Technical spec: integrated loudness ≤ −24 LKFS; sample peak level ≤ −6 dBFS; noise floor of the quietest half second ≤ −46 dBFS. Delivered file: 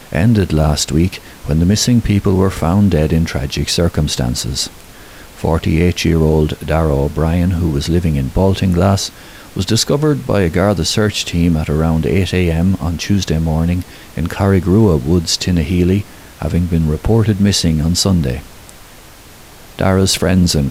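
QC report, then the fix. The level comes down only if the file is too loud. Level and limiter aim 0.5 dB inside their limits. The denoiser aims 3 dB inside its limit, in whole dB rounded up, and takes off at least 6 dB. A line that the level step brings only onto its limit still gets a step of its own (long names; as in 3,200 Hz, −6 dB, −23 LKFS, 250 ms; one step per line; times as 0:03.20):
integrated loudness −14.5 LKFS: out of spec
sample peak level −2.5 dBFS: out of spec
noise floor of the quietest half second −38 dBFS: out of spec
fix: level −10 dB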